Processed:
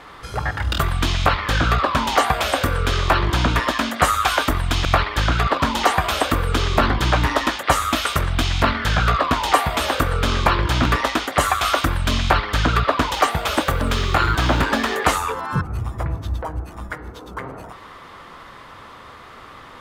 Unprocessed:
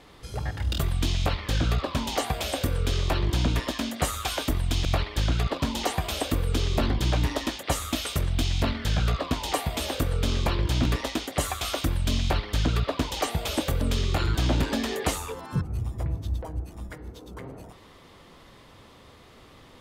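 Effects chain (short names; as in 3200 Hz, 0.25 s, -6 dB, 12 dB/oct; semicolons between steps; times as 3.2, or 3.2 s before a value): 13.15–15.1 G.711 law mismatch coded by A; bell 1300 Hz +13.5 dB 1.6 oct; gain +4 dB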